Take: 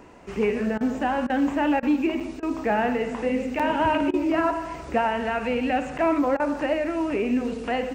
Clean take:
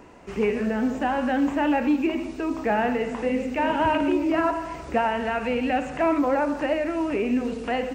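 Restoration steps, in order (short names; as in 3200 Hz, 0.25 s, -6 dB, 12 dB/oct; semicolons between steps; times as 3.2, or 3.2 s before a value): interpolate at 2.2/3.59/5.98, 6.1 ms; interpolate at 0.78/1.27/1.8/2.4/4.11/6.37, 26 ms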